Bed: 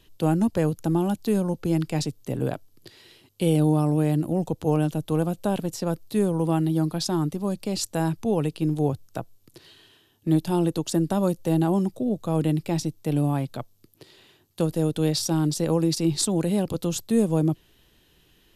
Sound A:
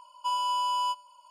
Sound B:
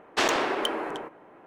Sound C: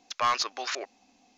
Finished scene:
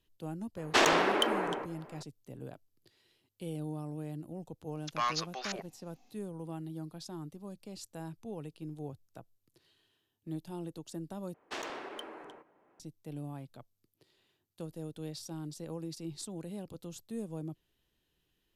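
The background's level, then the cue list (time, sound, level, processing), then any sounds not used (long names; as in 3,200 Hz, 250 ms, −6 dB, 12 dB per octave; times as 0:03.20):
bed −18.5 dB
0:00.57: mix in B −0.5 dB
0:04.77: mix in C −6.5 dB
0:11.34: overwrite with B −16 dB
not used: A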